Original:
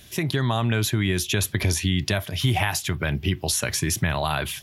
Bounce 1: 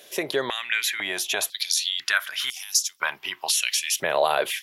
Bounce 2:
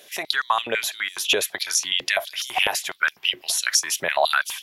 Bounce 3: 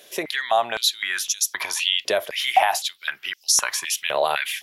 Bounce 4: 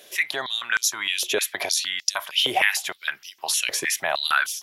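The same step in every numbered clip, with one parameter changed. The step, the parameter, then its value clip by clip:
step-sequenced high-pass, rate: 2 Hz, 12 Hz, 3.9 Hz, 6.5 Hz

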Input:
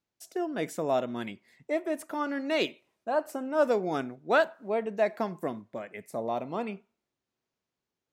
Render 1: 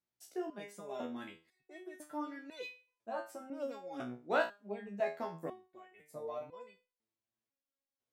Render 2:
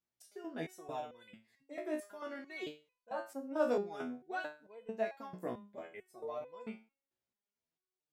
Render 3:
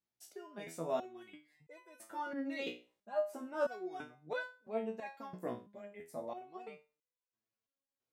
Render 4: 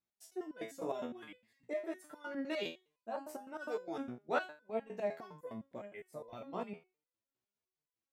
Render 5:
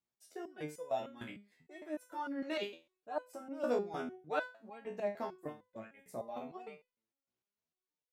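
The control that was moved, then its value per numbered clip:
resonator arpeggio, rate: 2 Hz, 4.5 Hz, 3 Hz, 9.8 Hz, 6.6 Hz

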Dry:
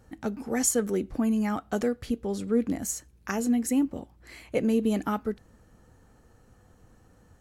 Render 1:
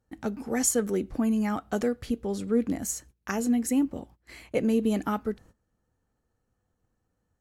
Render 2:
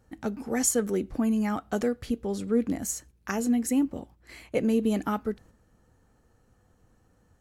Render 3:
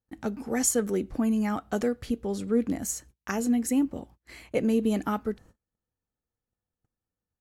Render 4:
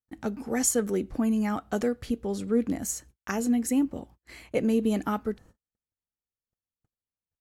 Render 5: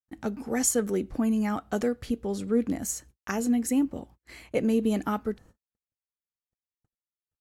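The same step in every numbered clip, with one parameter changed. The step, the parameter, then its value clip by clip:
gate, range: -19 dB, -6 dB, -33 dB, -46 dB, -58 dB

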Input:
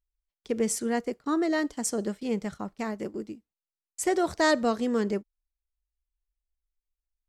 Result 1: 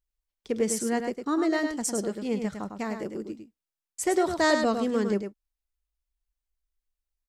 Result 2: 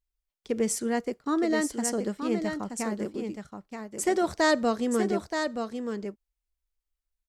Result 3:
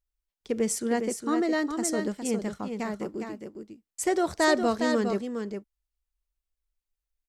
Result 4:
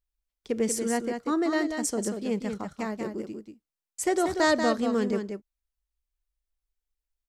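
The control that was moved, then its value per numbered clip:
delay, time: 104 ms, 926 ms, 409 ms, 187 ms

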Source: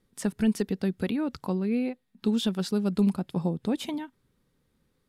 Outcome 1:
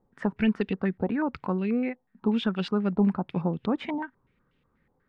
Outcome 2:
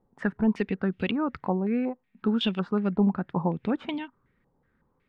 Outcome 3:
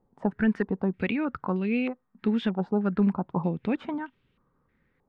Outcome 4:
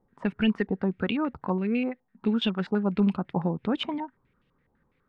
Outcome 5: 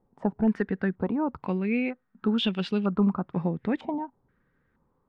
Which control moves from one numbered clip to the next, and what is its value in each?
step-sequenced low-pass, rate: 8.2 Hz, 5.4 Hz, 3.2 Hz, 12 Hz, 2.1 Hz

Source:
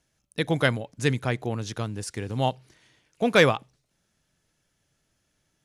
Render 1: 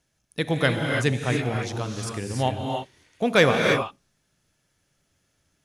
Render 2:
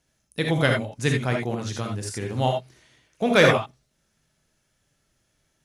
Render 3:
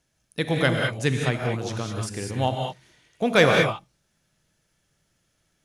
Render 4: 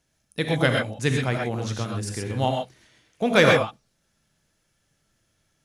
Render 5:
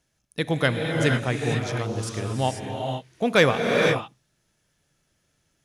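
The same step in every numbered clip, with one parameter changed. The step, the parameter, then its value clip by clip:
gated-style reverb, gate: 350 ms, 100 ms, 230 ms, 150 ms, 520 ms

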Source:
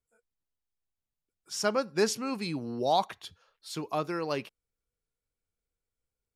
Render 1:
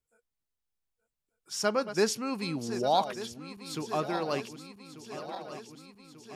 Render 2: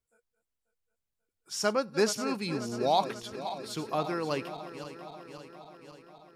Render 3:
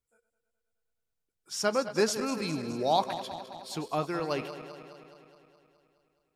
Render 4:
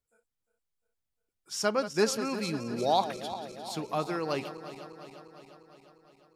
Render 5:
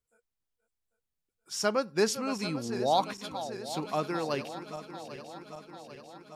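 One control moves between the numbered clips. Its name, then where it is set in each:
backward echo that repeats, time: 595 ms, 269 ms, 105 ms, 176 ms, 397 ms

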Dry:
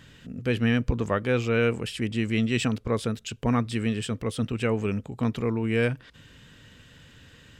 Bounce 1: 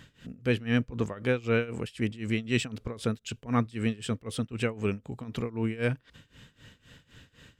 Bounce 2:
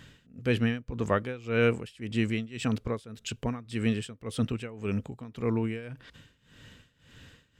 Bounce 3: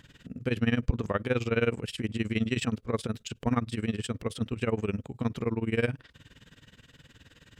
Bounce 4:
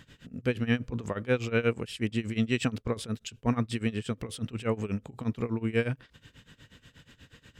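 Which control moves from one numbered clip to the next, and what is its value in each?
tremolo, rate: 3.9 Hz, 1.8 Hz, 19 Hz, 8.3 Hz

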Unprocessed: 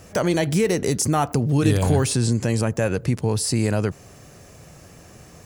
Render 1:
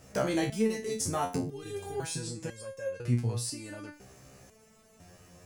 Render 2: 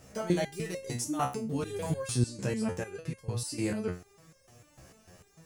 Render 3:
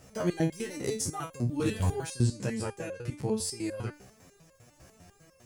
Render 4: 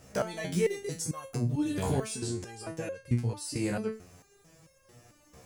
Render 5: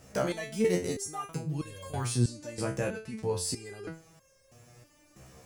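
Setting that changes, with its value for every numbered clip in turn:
resonator arpeggio, rate: 2 Hz, 6.7 Hz, 10 Hz, 4.5 Hz, 3.1 Hz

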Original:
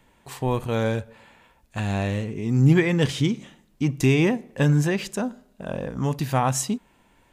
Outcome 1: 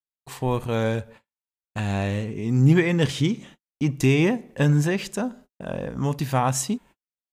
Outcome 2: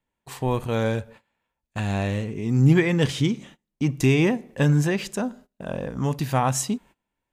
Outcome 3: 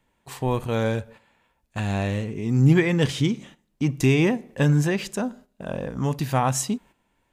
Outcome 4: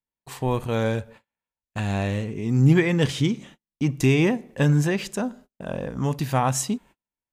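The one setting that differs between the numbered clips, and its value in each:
gate, range: -54 dB, -23 dB, -10 dB, -38 dB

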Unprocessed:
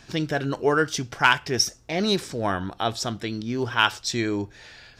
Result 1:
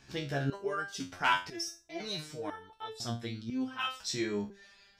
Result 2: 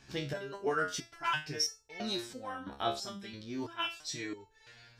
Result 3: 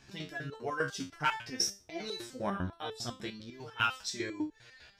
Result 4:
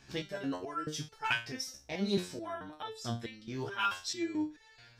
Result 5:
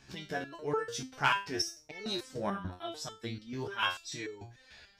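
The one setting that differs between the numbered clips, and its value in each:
resonator arpeggio, rate: 2 Hz, 3 Hz, 10 Hz, 4.6 Hz, 6.8 Hz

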